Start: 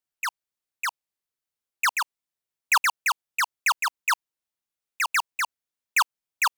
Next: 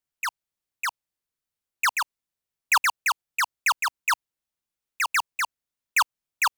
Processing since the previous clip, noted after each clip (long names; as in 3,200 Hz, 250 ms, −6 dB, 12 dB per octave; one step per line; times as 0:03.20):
low-shelf EQ 190 Hz +7 dB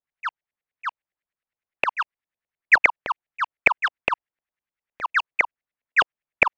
flat-topped bell 4,400 Hz +11.5 dB 2.9 octaves
auto-filter low-pass saw up 9.8 Hz 570–2,200 Hz
level −4.5 dB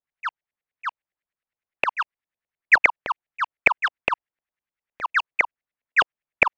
no processing that can be heard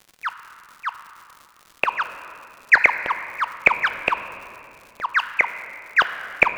surface crackle 160 per second −36 dBFS
on a send at −9 dB: convolution reverb RT60 2.7 s, pre-delay 5 ms
on the sum: level +1.5 dB